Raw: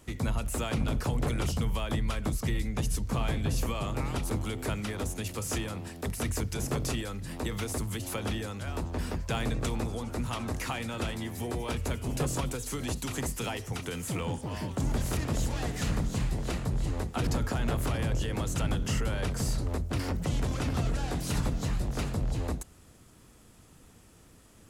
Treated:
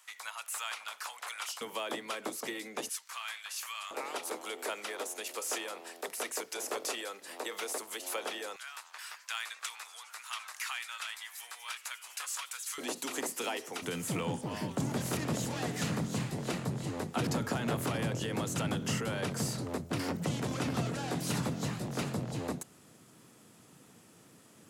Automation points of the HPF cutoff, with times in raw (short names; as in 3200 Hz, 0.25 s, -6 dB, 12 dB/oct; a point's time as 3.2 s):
HPF 24 dB/oct
980 Hz
from 1.61 s 330 Hz
from 2.89 s 1200 Hz
from 3.91 s 420 Hz
from 8.56 s 1200 Hz
from 12.78 s 290 Hz
from 13.82 s 130 Hz